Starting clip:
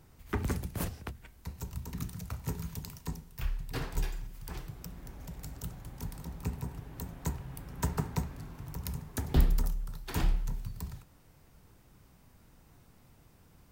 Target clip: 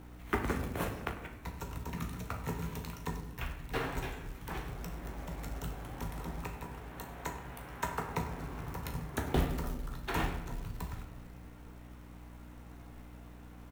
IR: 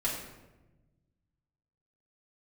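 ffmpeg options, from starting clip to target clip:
-filter_complex "[0:a]asplit=2[link_01][link_02];[link_02]adelay=38,volume=-12dB[link_03];[link_01][link_03]amix=inputs=2:normalize=0,asplit=2[link_04][link_05];[link_05]acompressor=threshold=-39dB:ratio=6,volume=1dB[link_06];[link_04][link_06]amix=inputs=2:normalize=0,asettb=1/sr,asplit=3[link_07][link_08][link_09];[link_07]atrim=end=6.404[link_10];[link_08]atrim=start=6.4:end=8.09,asetpts=PTS-STARTPTS,afade=type=in:duration=0.004:curve=qsin,afade=type=out:start_time=1.686:duration=0.004:curve=qsin,lowshelf=frequency=430:gain=-9.5[link_11];[link_09]atrim=start=8.086[link_12];[link_10][link_11]acrossfade=duration=0.004:curve1=hsin:curve2=qsin[link_13];[link_13][link_12]acrossfade=duration=0.004:curve1=qsin:curve2=hsin,asplit=2[link_14][link_15];[1:a]atrim=start_sample=2205,adelay=13[link_16];[link_15][link_16]afir=irnorm=-1:irlink=0,volume=-10.5dB[link_17];[link_14][link_17]amix=inputs=2:normalize=0,aeval=exprs='val(0)+0.00794*(sin(2*PI*60*n/s)+sin(2*PI*2*60*n/s)/2+sin(2*PI*3*60*n/s)/3+sin(2*PI*4*60*n/s)/4+sin(2*PI*5*60*n/s)/5)':channel_layout=same,bass=frequency=250:gain=-10,treble=frequency=4000:gain=-12,bandreject=frequency=4800:width=6.5,asplit=2[link_18][link_19];[link_19]adelay=98,lowpass=frequency=2000:poles=1,volume=-15dB,asplit=2[link_20][link_21];[link_21]adelay=98,lowpass=frequency=2000:poles=1,volume=0.39,asplit=2[link_22][link_23];[link_23]adelay=98,lowpass=frequency=2000:poles=1,volume=0.39,asplit=2[link_24][link_25];[link_25]adelay=98,lowpass=frequency=2000:poles=1,volume=0.39[link_26];[link_18][link_20][link_22][link_24][link_26]amix=inputs=5:normalize=0,acrusher=bits=5:mode=log:mix=0:aa=0.000001,volume=1dB"

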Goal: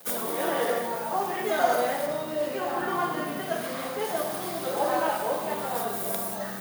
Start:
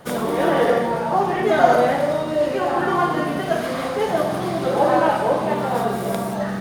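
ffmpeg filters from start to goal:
ffmpeg -i in.wav -filter_complex "[0:a]acrossover=split=300|760|4100[link_01][link_02][link_03][link_04];[link_03]acrusher=bits=7:mix=0:aa=0.000001[link_05];[link_01][link_02][link_05][link_04]amix=inputs=4:normalize=0,aemphasis=mode=production:type=bsi,bandreject=frequency=50:width_type=h:width=6,bandreject=frequency=100:width_type=h:width=6,bandreject=frequency=150:width_type=h:width=6,asettb=1/sr,asplit=3[link_06][link_07][link_08];[link_06]atrim=end=2.064[link_09];[link_07]atrim=start=2.06:end=4.05,asetpts=PTS-STARTPTS,afade=type=in:duration=0.004:curve=qsin,afade=type=out:start_time=1.986:duration=0.004:curve=qsin,bass=frequency=250:gain=6,treble=frequency=4000:gain=-4[link_10];[link_08]atrim=start=4.046[link_11];[link_09][link_10]acrossfade=duration=0.004:curve1=hsin:curve2=qsin[link_12];[link_12][link_11]acrossfade=duration=0.004:curve1=qsin:curve2=hsin,volume=-8dB" out.wav

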